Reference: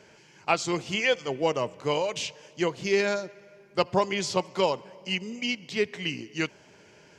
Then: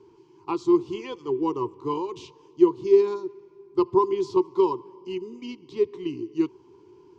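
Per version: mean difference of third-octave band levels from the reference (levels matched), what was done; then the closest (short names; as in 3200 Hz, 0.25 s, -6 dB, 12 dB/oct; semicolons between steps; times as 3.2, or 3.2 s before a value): 10.5 dB: EQ curve 120 Hz 0 dB, 200 Hz -11 dB, 370 Hz +14 dB, 610 Hz -28 dB, 1000 Hz +6 dB, 1600 Hz -23 dB, 3800 Hz -11 dB, 8000 Hz -19 dB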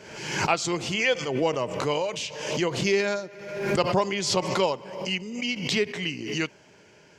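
5.5 dB: backwards sustainer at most 55 dB/s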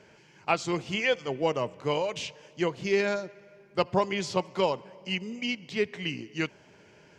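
1.5 dB: tone controls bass +2 dB, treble -5 dB; gain -1.5 dB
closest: third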